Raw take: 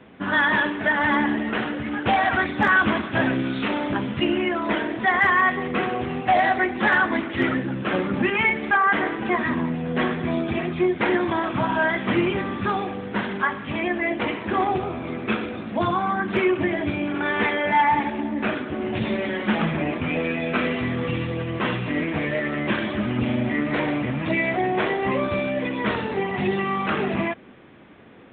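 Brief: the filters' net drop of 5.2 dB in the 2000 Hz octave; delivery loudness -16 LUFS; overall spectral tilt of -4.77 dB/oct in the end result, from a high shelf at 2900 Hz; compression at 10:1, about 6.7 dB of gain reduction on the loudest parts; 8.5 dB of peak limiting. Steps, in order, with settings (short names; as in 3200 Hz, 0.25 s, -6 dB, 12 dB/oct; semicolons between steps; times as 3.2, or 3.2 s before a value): bell 2000 Hz -8 dB; high shelf 2900 Hz +4 dB; compressor 10:1, threshold -23 dBFS; gain +15.5 dB; limiter -7.5 dBFS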